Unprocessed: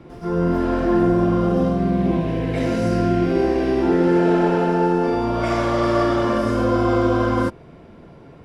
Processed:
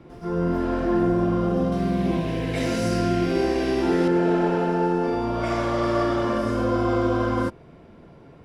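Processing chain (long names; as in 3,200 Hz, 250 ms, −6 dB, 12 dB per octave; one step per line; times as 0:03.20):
0:01.72–0:04.08: high-shelf EQ 2,400 Hz +10.5 dB
level −4 dB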